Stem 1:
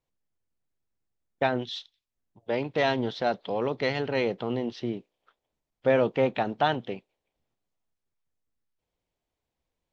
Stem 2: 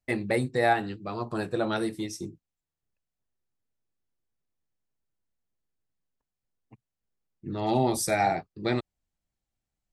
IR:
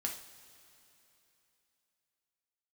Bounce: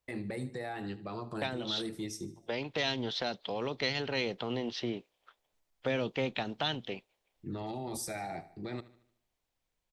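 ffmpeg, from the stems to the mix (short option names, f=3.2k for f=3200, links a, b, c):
-filter_complex "[0:a]equalizer=f=150:w=0.33:g=-11,dynaudnorm=f=930:g=5:m=4.5dB,volume=1dB[a];[1:a]alimiter=level_in=1.5dB:limit=-24dB:level=0:latency=1:release=68,volume=-1.5dB,volume=-3.5dB,asplit=2[b][c];[c]volume=-17.5dB,aecho=0:1:75|150|225|300|375|450|525:1|0.47|0.221|0.104|0.0488|0.0229|0.0108[d];[a][b][d]amix=inputs=3:normalize=0,acrossover=split=300|3000[e][f][g];[f]acompressor=threshold=-36dB:ratio=6[h];[e][h][g]amix=inputs=3:normalize=0"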